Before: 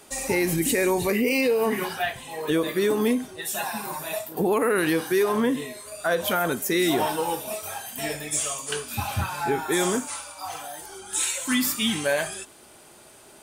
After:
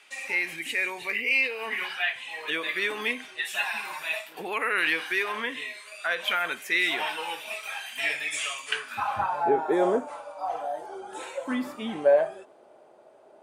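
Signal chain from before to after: dynamic bell 5.9 kHz, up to -4 dB, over -40 dBFS, Q 0.89; band-pass sweep 2.4 kHz -> 590 Hz, 8.68–9.44 s; gain riding within 4 dB 2 s; trim +7.5 dB

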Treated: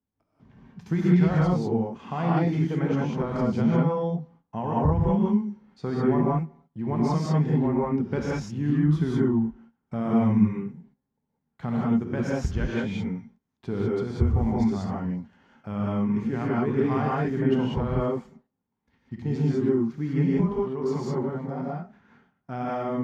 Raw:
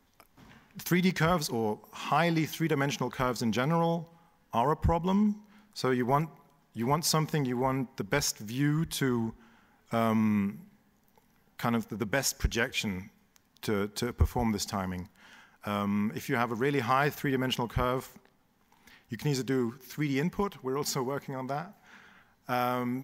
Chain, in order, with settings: low-pass 7.3 kHz 12 dB/octave; gate -54 dBFS, range -18 dB; high-pass 90 Hz 12 dB/octave; tilt EQ -4 dB/octave; gated-style reverb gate 220 ms rising, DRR -5.5 dB; trim -8 dB

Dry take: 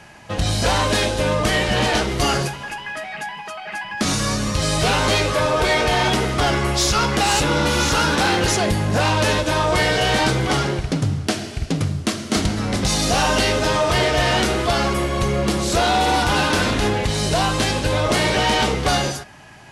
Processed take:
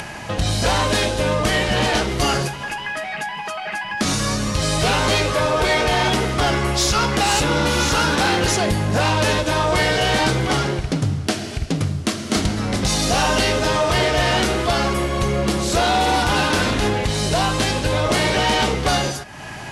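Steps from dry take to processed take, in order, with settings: upward compressor, threshold -21 dBFS

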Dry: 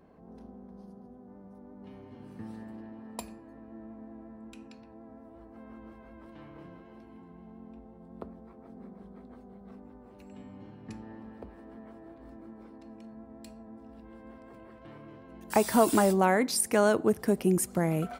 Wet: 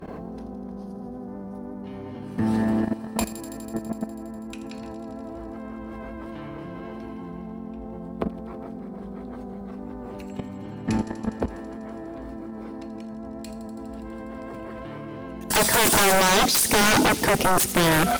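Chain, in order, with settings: level held to a coarse grid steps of 15 dB; 16.80–17.28 s: small resonant body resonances 280/890/3700 Hz, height 16 dB -> 13 dB, ringing for 65 ms; sine folder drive 20 dB, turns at -15 dBFS; on a send: feedback echo behind a high-pass 82 ms, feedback 84%, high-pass 4.1 kHz, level -10 dB

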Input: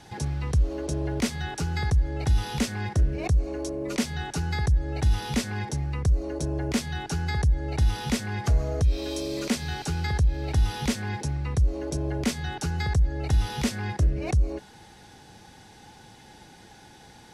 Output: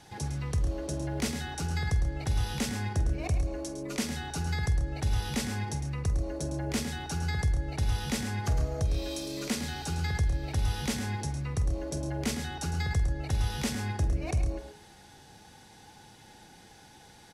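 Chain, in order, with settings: treble shelf 8.1 kHz +5.5 dB; hum notches 60/120/180/240/300/360/420 Hz; multi-tap echo 47/107/136 ms -13/-9.5/-13 dB; trim -4.5 dB

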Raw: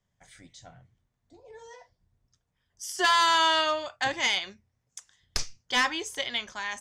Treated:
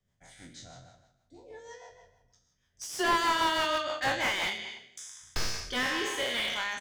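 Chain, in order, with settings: spectral sustain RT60 0.97 s; speakerphone echo 180 ms, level -9 dB; rotary cabinet horn 6.3 Hz, later 0.9 Hz, at 4.12 s; slew-rate limiter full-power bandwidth 100 Hz

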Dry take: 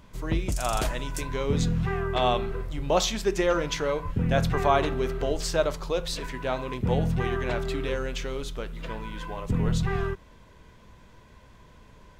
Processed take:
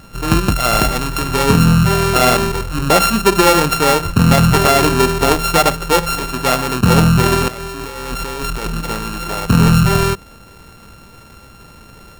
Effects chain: sorted samples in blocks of 32 samples; bass shelf 70 Hz -7.5 dB; 7.48–8.81 s: compressor with a negative ratio -38 dBFS, ratio -1; dynamic bell 190 Hz, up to +5 dB, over -40 dBFS, Q 0.96; loudness maximiser +14.5 dB; trim -1 dB

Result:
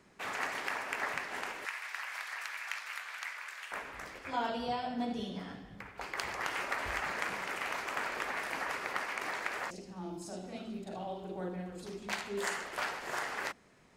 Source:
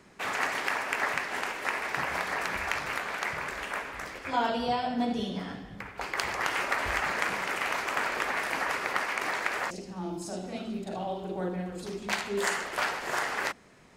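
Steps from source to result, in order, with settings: 1.65–3.72 s: high-pass 1.4 kHz 12 dB/octave; trim -6.5 dB

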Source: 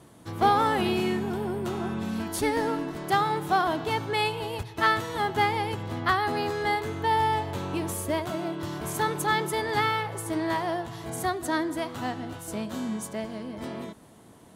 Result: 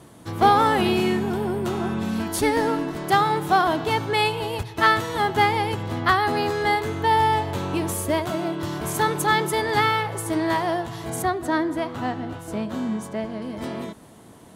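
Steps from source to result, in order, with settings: 11.22–13.42 s: treble shelf 3.8 kHz -11 dB; trim +5 dB

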